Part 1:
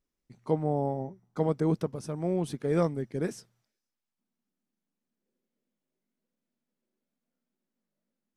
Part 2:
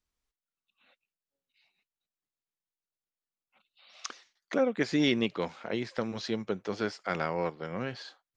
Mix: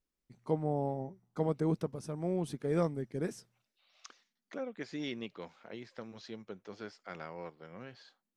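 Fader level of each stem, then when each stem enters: −4.5, −13.0 decibels; 0.00, 0.00 seconds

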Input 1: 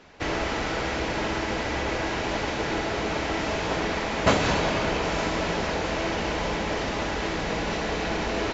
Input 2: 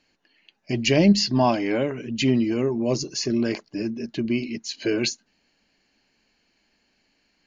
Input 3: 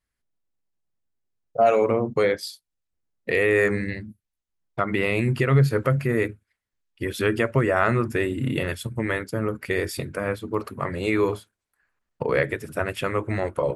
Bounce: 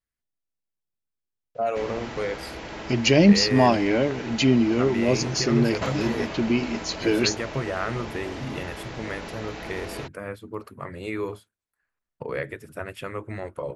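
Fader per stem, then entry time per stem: −9.0, +1.5, −8.0 decibels; 1.55, 2.20, 0.00 seconds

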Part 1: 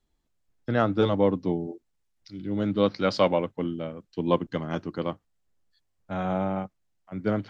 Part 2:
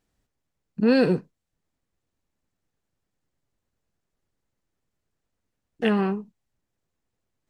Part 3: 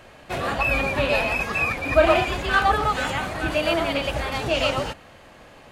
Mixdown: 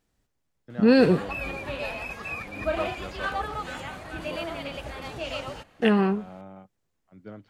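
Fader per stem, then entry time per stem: −16.5, +1.5, −11.0 decibels; 0.00, 0.00, 0.70 seconds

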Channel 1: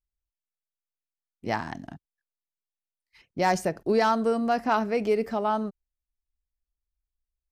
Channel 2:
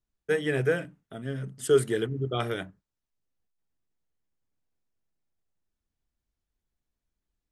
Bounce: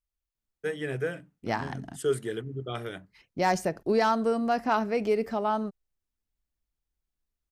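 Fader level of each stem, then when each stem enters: −1.5, −5.5 decibels; 0.00, 0.35 seconds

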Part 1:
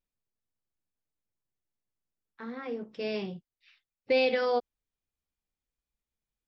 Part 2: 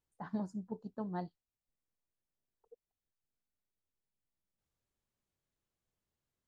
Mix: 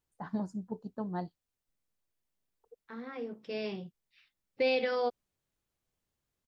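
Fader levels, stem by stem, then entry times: −3.5, +3.0 decibels; 0.50, 0.00 seconds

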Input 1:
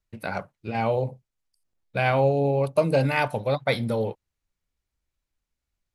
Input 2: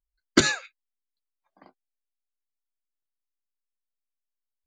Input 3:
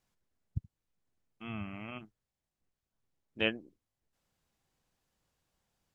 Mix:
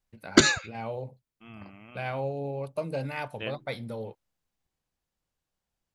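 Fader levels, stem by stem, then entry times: −11.0, +1.0, −6.5 decibels; 0.00, 0.00, 0.00 seconds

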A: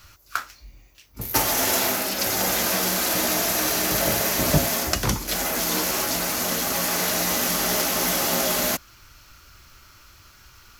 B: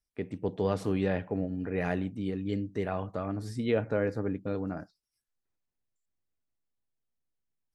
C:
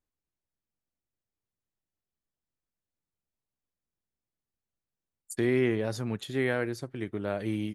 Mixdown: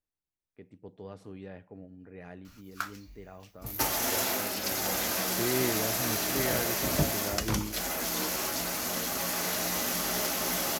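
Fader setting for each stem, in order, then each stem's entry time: −7.5, −15.5, −5.0 decibels; 2.45, 0.40, 0.00 seconds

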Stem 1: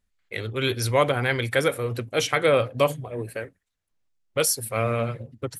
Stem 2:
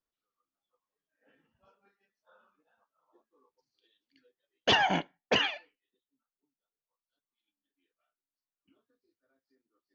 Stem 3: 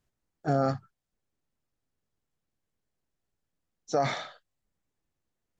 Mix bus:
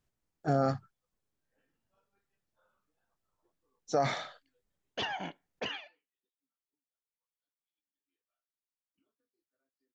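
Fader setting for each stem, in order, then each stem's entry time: muted, −11.0 dB, −2.0 dB; muted, 0.30 s, 0.00 s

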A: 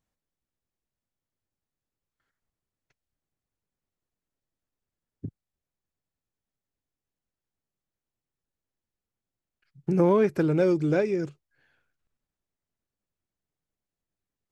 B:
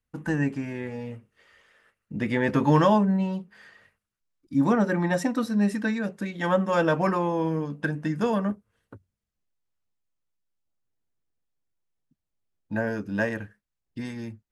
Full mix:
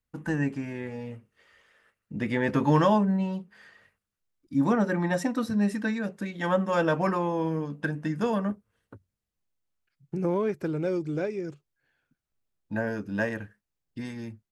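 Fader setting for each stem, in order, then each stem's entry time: −6.0, −2.0 decibels; 0.25, 0.00 seconds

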